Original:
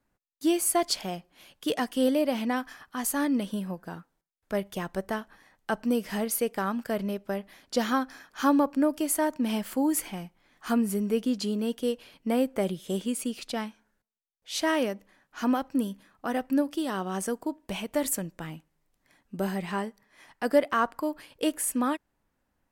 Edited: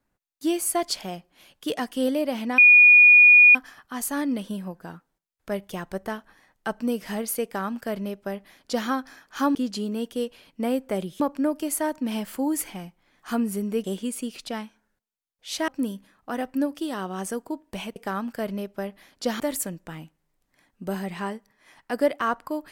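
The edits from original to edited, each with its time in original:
2.58 add tone 2450 Hz -9 dBFS 0.97 s
6.47–7.91 copy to 17.92
11.22–12.87 move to 8.58
14.71–15.64 cut

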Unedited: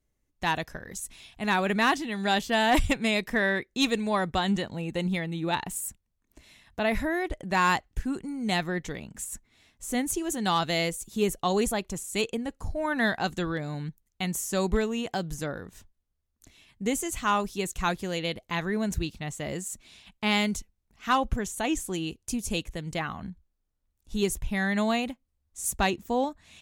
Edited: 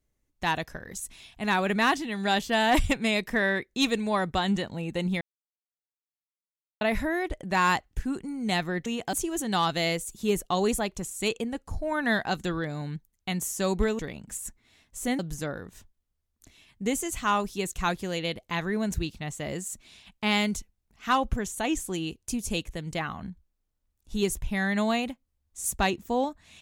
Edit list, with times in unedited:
5.21–6.81 mute
8.86–10.06 swap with 14.92–15.19

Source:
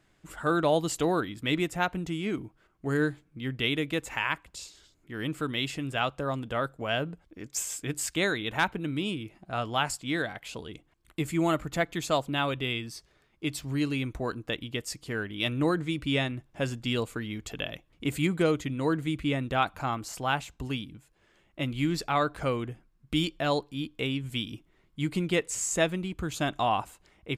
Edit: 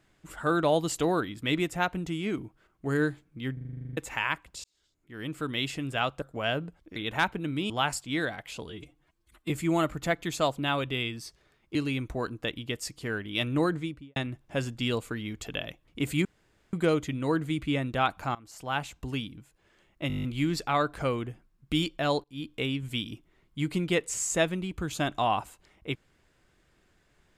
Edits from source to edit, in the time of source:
3.53 stutter in place 0.04 s, 11 plays
4.64–5.59 fade in
6.22–6.67 cut
7.41–8.36 cut
9.1–9.67 cut
10.66–11.2 stretch 1.5×
13.45–13.8 cut
15.75–16.21 studio fade out
18.3 insert room tone 0.48 s
19.92–20.47 fade in, from -23.5 dB
21.65 stutter 0.02 s, 9 plays
23.65–23.9 fade in, from -23 dB

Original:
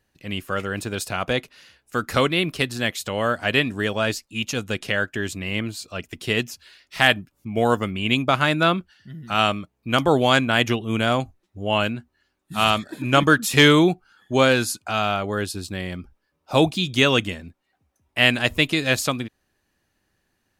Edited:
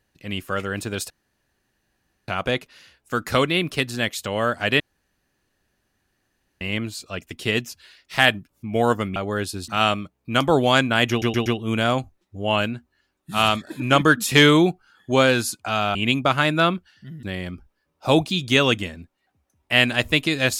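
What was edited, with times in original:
1.1 insert room tone 1.18 s
3.62–5.43 room tone
7.98–9.26 swap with 15.17–15.69
10.68 stutter 0.12 s, 4 plays

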